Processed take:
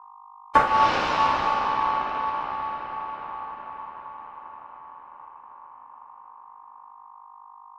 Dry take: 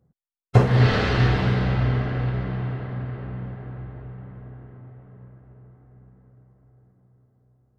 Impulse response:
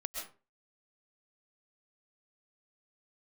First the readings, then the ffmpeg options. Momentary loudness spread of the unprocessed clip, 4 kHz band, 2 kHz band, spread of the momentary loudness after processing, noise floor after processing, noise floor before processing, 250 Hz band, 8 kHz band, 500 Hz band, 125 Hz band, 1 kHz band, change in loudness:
20 LU, -0.5 dB, 0.0 dB, 21 LU, -47 dBFS, -76 dBFS, -12.0 dB, n/a, -5.0 dB, -26.0 dB, +11.0 dB, -1.5 dB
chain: -af "aeval=exprs='val(0)+0.00708*(sin(2*PI*50*n/s)+sin(2*PI*2*50*n/s)/2+sin(2*PI*3*50*n/s)/3+sin(2*PI*4*50*n/s)/4+sin(2*PI*5*50*n/s)/5)':c=same,aeval=exprs='val(0)*sin(2*PI*1000*n/s)':c=same"

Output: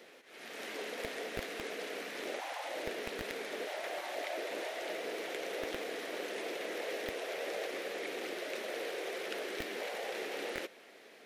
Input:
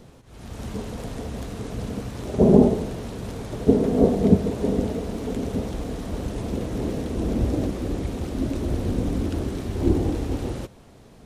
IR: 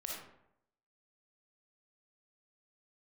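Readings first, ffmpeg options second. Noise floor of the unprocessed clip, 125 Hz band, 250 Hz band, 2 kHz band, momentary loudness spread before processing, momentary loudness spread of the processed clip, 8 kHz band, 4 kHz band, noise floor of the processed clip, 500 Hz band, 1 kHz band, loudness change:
-49 dBFS, -35.0 dB, -25.0 dB, +5.0 dB, 14 LU, 2 LU, -5.0 dB, +1.0 dB, -57 dBFS, -13.0 dB, -6.5 dB, -15.0 dB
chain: -filter_complex "[0:a]afftfilt=real='re*lt(hypot(re,im),0.2)':imag='im*lt(hypot(re,im),0.2)':win_size=1024:overlap=0.75,highpass=f=58:p=1,acrossover=split=290[a][b];[a]acrusher=bits=4:mix=0:aa=0.000001[c];[c][b]amix=inputs=2:normalize=0,equalizer=f=125:t=o:w=1:g=-6,equalizer=f=250:t=o:w=1:g=-5,equalizer=f=1k:t=o:w=1:g=-9,equalizer=f=2k:t=o:w=1:g=9,equalizer=f=8k:t=o:w=1:g=-7"

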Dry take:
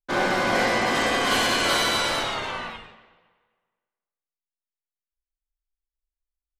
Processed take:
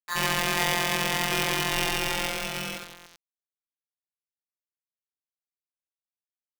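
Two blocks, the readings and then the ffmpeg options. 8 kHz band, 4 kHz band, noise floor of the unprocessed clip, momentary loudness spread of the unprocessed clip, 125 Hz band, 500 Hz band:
+0.5 dB, -3.0 dB, under -85 dBFS, 12 LU, +1.5 dB, -7.0 dB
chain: -filter_complex "[0:a]lowpass=f=2.3k:w=0.5412,lowpass=f=2.3k:w=1.3066,asplit=2[a][b];[b]acompressor=threshold=-38dB:ratio=6,volume=1.5dB[c];[a][c]amix=inputs=2:normalize=0,acrossover=split=560[d][e];[e]adelay=70[f];[d][f]amix=inputs=2:normalize=0,afftfilt=real='hypot(re,im)*cos(PI*b)':imag='0':win_size=1024:overlap=0.75,aresample=11025,acrusher=bits=6:mix=0:aa=0.000001,aresample=44100,aeval=exprs='val(0)*sgn(sin(2*PI*1400*n/s))':c=same"

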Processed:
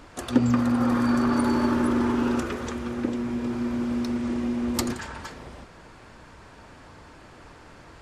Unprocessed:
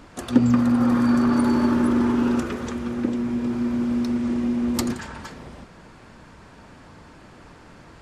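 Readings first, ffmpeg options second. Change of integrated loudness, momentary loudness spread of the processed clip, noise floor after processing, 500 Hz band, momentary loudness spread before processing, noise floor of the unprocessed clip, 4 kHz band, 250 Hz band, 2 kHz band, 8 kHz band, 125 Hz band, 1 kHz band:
-3.5 dB, 11 LU, -49 dBFS, -1.0 dB, 10 LU, -47 dBFS, 0.0 dB, -4.0 dB, 0.0 dB, 0.0 dB, -2.5 dB, 0.0 dB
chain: -af "equalizer=f=190:t=o:w=1:g=-6"

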